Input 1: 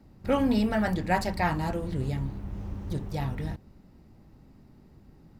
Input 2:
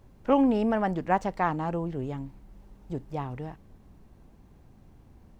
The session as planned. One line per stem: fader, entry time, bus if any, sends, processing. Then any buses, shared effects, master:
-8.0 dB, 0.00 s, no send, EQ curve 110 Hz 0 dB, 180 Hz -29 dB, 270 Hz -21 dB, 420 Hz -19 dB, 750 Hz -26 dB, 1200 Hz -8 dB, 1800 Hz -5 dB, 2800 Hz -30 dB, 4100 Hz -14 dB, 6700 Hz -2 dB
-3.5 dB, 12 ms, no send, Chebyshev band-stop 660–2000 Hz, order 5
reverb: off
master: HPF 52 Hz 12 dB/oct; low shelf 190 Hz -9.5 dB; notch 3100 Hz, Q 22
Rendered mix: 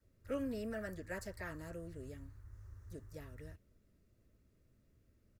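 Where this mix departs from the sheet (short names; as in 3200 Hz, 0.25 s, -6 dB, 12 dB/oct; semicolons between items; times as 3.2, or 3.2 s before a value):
stem 2 -3.5 dB -> -13.0 dB; master: missing HPF 52 Hz 12 dB/oct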